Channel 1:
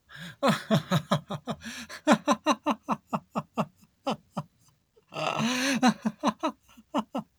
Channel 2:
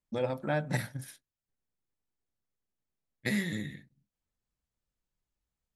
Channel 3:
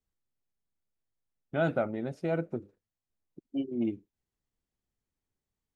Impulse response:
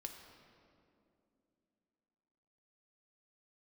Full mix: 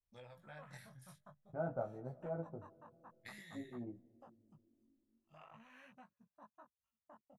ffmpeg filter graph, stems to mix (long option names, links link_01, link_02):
-filter_complex "[0:a]afwtdn=0.0282,equalizer=frequency=4100:width_type=o:width=2.1:gain=-9,acompressor=threshold=-35dB:ratio=4,adelay=150,volume=-13.5dB[link_01];[1:a]acompressor=threshold=-31dB:ratio=4,volume=-12dB,asplit=2[link_02][link_03];[link_03]volume=-20.5dB[link_04];[2:a]lowpass=frequency=1000:width=0.5412,lowpass=frequency=1000:width=1.3066,volume=-2dB,asplit=2[link_05][link_06];[link_06]volume=-7dB[link_07];[3:a]atrim=start_sample=2205[link_08];[link_04][link_07]amix=inputs=2:normalize=0[link_09];[link_09][link_08]afir=irnorm=-1:irlink=0[link_10];[link_01][link_02][link_05][link_10]amix=inputs=4:normalize=0,equalizer=frequency=290:width=0.73:gain=-15,flanger=delay=15.5:depth=6.8:speed=0.5"